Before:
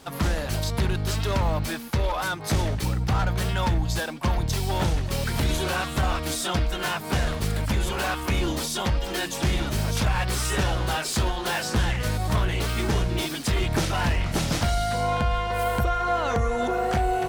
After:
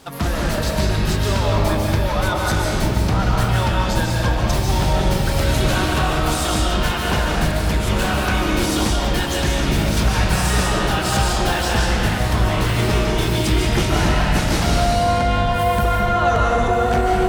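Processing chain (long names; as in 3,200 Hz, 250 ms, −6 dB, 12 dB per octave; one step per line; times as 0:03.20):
comb and all-pass reverb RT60 2 s, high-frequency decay 0.7×, pre-delay 105 ms, DRR −3 dB
level +2.5 dB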